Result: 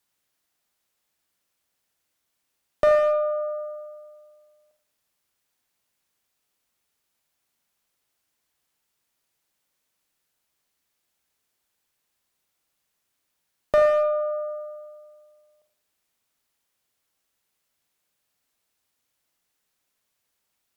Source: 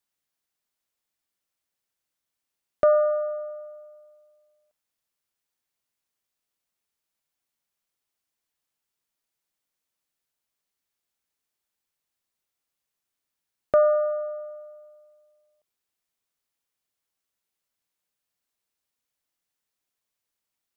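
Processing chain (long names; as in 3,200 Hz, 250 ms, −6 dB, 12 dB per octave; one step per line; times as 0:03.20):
in parallel at +2.5 dB: downward compressor 12 to 1, threshold −33 dBFS, peak gain reduction 18 dB
on the sum: asymmetric clip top −18 dBFS
convolution reverb RT60 0.70 s, pre-delay 39 ms, DRR 6 dB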